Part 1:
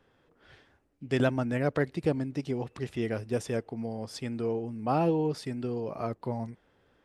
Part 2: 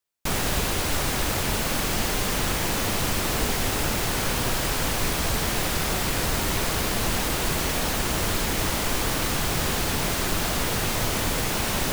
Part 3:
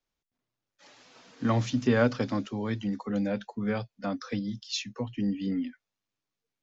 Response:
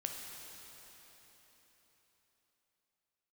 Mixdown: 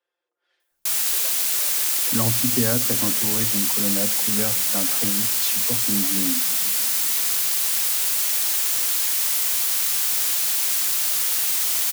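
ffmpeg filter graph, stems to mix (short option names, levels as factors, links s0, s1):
-filter_complex "[0:a]highpass=f=390:w=0.5412,highpass=f=390:w=1.3066,highshelf=f=2900:g=9.5,aecho=1:1:5.7:0.97,volume=0.1[s0];[1:a]aderivative,adelay=600,volume=1.41,asplit=2[s1][s2];[s2]volume=0.631[s3];[2:a]adelay=700,volume=1.06,asplit=2[s4][s5];[s5]volume=0.237[s6];[3:a]atrim=start_sample=2205[s7];[s3][s6]amix=inputs=2:normalize=0[s8];[s8][s7]afir=irnorm=-1:irlink=0[s9];[s0][s1][s4][s9]amix=inputs=4:normalize=0,acrossover=split=240|3000[s10][s11][s12];[s11]acompressor=threshold=0.0631:ratio=6[s13];[s10][s13][s12]amix=inputs=3:normalize=0"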